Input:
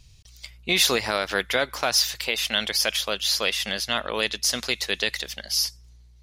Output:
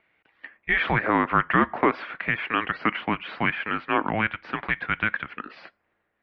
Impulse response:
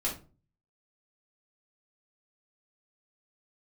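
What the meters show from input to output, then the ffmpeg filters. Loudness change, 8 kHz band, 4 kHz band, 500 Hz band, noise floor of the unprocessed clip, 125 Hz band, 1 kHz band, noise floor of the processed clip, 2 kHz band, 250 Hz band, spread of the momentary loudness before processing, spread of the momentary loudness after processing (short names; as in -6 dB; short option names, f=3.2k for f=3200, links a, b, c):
-1.5 dB, under -40 dB, -16.5 dB, -2.0 dB, -52 dBFS, +8.0 dB, +7.5 dB, -75 dBFS, +2.5 dB, +7.5 dB, 6 LU, 11 LU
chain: -filter_complex "[0:a]asplit=2[a][b];[1:a]atrim=start_sample=2205[c];[b][c]afir=irnorm=-1:irlink=0,volume=-26.5dB[d];[a][d]amix=inputs=2:normalize=0,highpass=f=560:t=q:w=0.5412,highpass=f=560:t=q:w=1.307,lowpass=f=2.4k:t=q:w=0.5176,lowpass=f=2.4k:t=q:w=0.7071,lowpass=f=2.4k:t=q:w=1.932,afreqshift=-330,volume=5.5dB"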